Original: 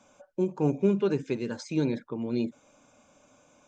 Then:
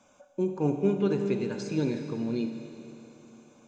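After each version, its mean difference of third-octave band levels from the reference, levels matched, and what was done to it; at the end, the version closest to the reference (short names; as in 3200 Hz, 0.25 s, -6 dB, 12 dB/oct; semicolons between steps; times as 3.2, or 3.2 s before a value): 4.5 dB: Schroeder reverb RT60 3.2 s, combs from 31 ms, DRR 5.5 dB; gain -1.5 dB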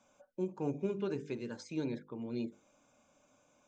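1.5 dB: notches 50/100/150/200/250/300/350/400/450/500 Hz; gain -8.5 dB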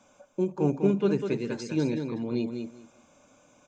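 3.0 dB: feedback echo 0.199 s, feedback 17%, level -6.5 dB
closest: second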